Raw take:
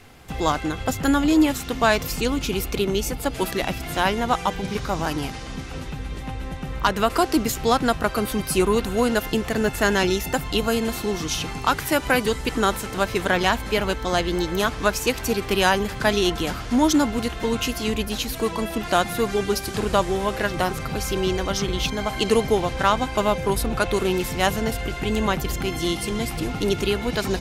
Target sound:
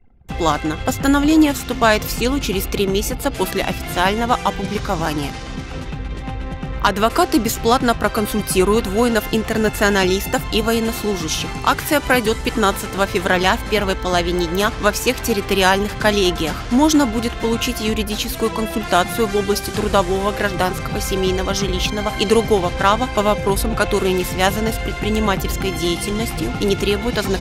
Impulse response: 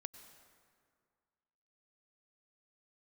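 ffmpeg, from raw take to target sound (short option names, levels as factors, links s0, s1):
-af "anlmdn=0.398,volume=1.68"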